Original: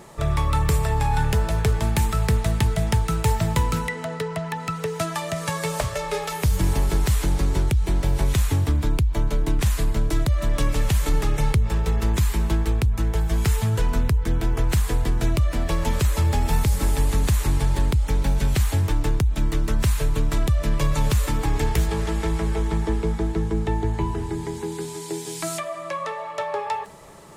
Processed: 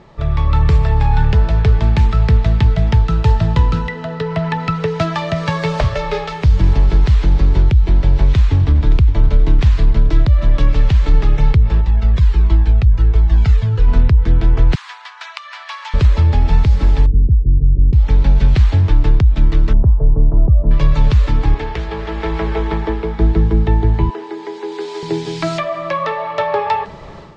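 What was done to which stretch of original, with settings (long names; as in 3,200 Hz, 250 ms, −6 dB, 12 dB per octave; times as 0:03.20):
0:03.04–0:04.26: notch filter 2,200 Hz, Q 9
0:07.95–0:08.91: delay throw 570 ms, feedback 45%, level −13 dB
0:11.81–0:13.88: flanger whose copies keep moving one way falling 1.4 Hz
0:14.75–0:15.94: Butterworth high-pass 920 Hz
0:17.06–0:17.93: Gaussian smoothing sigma 24 samples
0:19.73–0:20.71: inverse Chebyshev low-pass filter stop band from 2,800 Hz, stop band 60 dB
0:21.54–0:23.19: bass and treble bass −13 dB, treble −6 dB
0:24.10–0:25.03: high-pass filter 350 Hz 24 dB per octave
whole clip: low-shelf EQ 130 Hz +9 dB; automatic gain control; low-pass filter 4,700 Hz 24 dB per octave; level −1 dB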